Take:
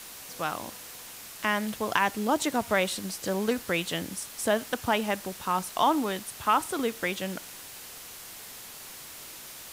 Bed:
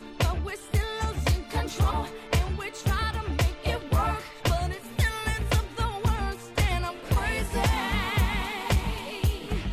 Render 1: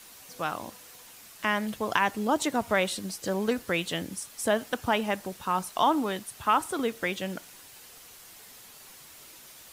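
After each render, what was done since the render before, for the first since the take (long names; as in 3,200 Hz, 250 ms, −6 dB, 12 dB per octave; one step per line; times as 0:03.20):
broadband denoise 7 dB, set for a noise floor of −44 dBFS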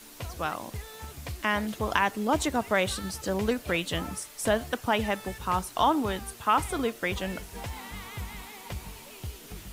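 mix in bed −13.5 dB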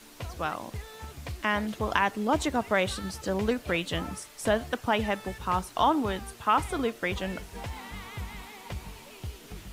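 high-shelf EQ 7,500 Hz −8 dB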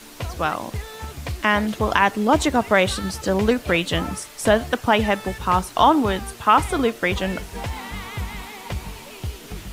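level +8.5 dB
brickwall limiter −2 dBFS, peak gain reduction 2 dB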